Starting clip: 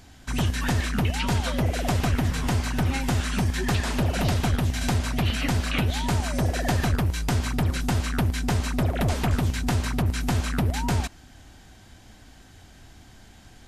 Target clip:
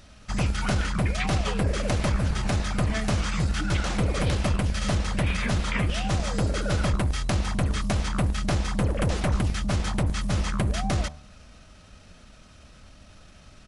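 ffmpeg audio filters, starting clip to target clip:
-af "asetrate=36028,aresample=44100,atempo=1.22405,bandreject=f=75.1:t=h:w=4,bandreject=f=150.2:t=h:w=4,bandreject=f=225.3:t=h:w=4,bandreject=f=300.4:t=h:w=4,bandreject=f=375.5:t=h:w=4,bandreject=f=450.6:t=h:w=4,bandreject=f=525.7:t=h:w=4,bandreject=f=600.8:t=h:w=4,bandreject=f=675.9:t=h:w=4,bandreject=f=751:t=h:w=4,bandreject=f=826.1:t=h:w=4,bandreject=f=901.2:t=h:w=4,bandreject=f=976.3:t=h:w=4,bandreject=f=1.0514k:t=h:w=4,bandreject=f=1.1265k:t=h:w=4,bandreject=f=1.2016k:t=h:w=4"

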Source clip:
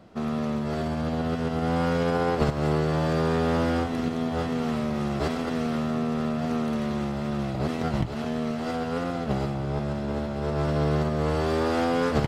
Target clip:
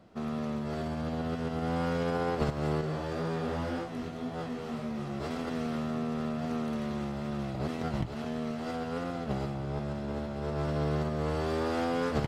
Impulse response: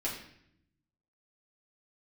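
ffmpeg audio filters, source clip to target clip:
-filter_complex "[0:a]asettb=1/sr,asplit=3[a][b][c];[a]atrim=end=2.814[d];[b]atrim=start=2.81:end=5.31,asetpts=PTS-STARTPTS,afade=t=in:d=0.004:c=qsin,afade=t=out:st=2.496:d=0.004:c=qsin,flanger=delay=17.5:depth=5.6:speed=1.9[e];[c]atrim=start=5.306[f];[d][e]acrossfade=d=0.004:c1=hsin:c2=qsin[g];[g][f]acrossfade=d=0.004:c1=qsin:c2=hsin,volume=-6dB"

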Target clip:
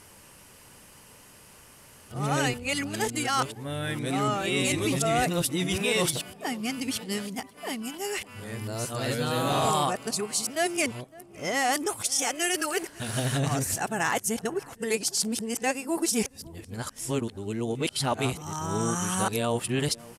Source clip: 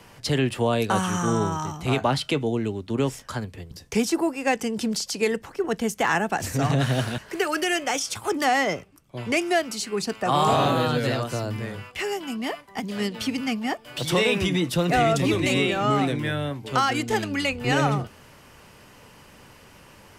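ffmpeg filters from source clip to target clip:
-filter_complex "[0:a]areverse,equalizer=f=10k:t=o:w=1.2:g=14,asplit=2[a][b];[b]adelay=556,lowpass=f=1.1k:p=1,volume=-20dB,asplit=2[c][d];[d]adelay=556,lowpass=f=1.1k:p=1,volume=0.48,asplit=2[e][f];[f]adelay=556,lowpass=f=1.1k:p=1,volume=0.48,asplit=2[g][h];[h]adelay=556,lowpass=f=1.1k:p=1,volume=0.48[i];[a][c][e][g][i]amix=inputs=5:normalize=0,volume=-5dB"

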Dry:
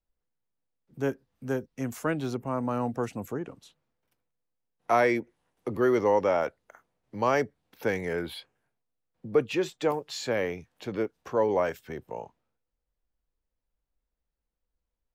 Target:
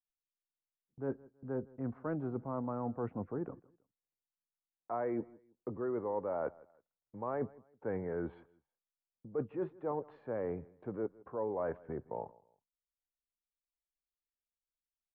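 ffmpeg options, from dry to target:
-af "agate=range=-23dB:threshold=-47dB:ratio=16:detection=peak,lowpass=f=1.3k:w=0.5412,lowpass=f=1.3k:w=1.3066,areverse,acompressor=threshold=-32dB:ratio=6,areverse,aecho=1:1:161|322:0.075|0.0225,volume=-1.5dB"

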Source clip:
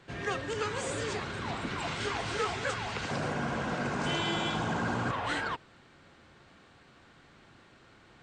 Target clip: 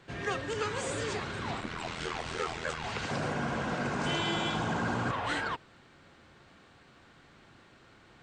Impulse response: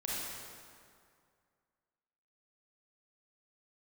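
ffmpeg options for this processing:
-filter_complex "[0:a]asettb=1/sr,asplit=3[a][b][c];[a]atrim=end=1.604[d];[b]atrim=start=1.6:end=2.84,asetpts=PTS-STARTPTS,afade=t=in:d=0.004:c=qsin,afade=t=out:st=1.236:d=0.004:c=qsin,aeval=exprs='val(0)*sin(2*PI*41*n/s)':c=same[e];[c]atrim=start=2.836[f];[d][e]acrossfade=d=0.004:c1=hsin:c2=qsin[g];[g][f]acrossfade=d=0.004:c1=qsin:c2=hsin"

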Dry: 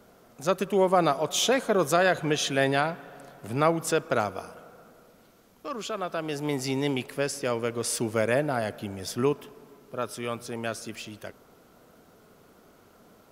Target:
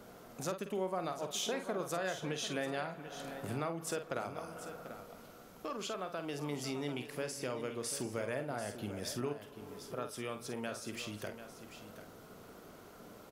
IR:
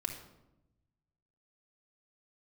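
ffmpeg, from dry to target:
-filter_complex "[0:a]acompressor=threshold=-42dB:ratio=3,asplit=2[a][b];[b]adelay=48,volume=-8.5dB[c];[a][c]amix=inputs=2:normalize=0,asplit=2[d][e];[e]aecho=0:1:741:0.266[f];[d][f]amix=inputs=2:normalize=0,volume=1.5dB"

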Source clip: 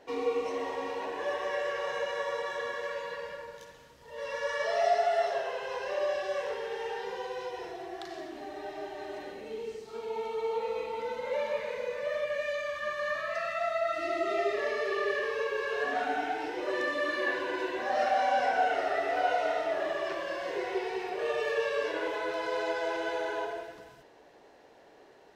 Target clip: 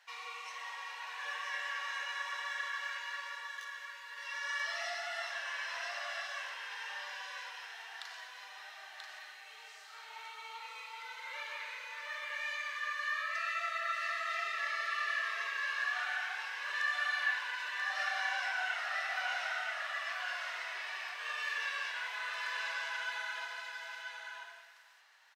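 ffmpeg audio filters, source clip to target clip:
-filter_complex "[0:a]highpass=f=1.2k:w=0.5412,highpass=f=1.2k:w=1.3066,asplit=2[a][b];[b]aecho=0:1:985:0.562[c];[a][c]amix=inputs=2:normalize=0"

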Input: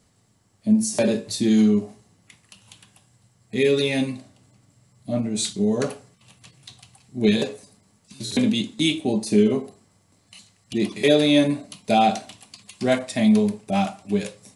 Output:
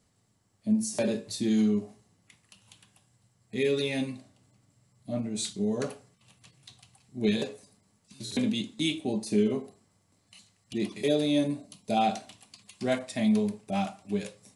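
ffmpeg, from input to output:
-filter_complex "[0:a]asettb=1/sr,asplit=3[a][b][c];[a]atrim=end=11.014[d];[b]atrim=start=11.01:end=11.97,asetpts=PTS-STARTPTS,afade=t=in:d=0.004:c=qsin,afade=t=out:st=0.956:d=0.004:c=qsin,equalizer=f=1.8k:t=o:w=2:g=-7[e];[c]atrim=start=11.966[f];[d][e]acrossfade=d=0.004:c1=hsin:c2=qsin[g];[g][f]acrossfade=d=0.004:c1=qsin:c2=hsin,volume=-7.5dB"

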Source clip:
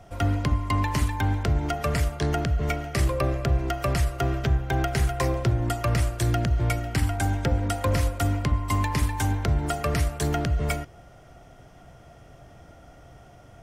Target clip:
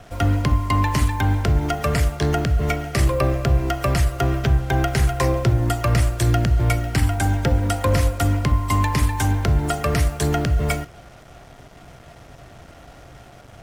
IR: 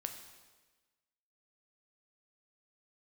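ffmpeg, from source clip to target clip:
-filter_complex "[0:a]acrusher=bits=7:mix=0:aa=0.5,asplit=2[a][b];[1:a]atrim=start_sample=2205,atrim=end_sample=3087[c];[b][c]afir=irnorm=-1:irlink=0,volume=-0.5dB[d];[a][d]amix=inputs=2:normalize=0"

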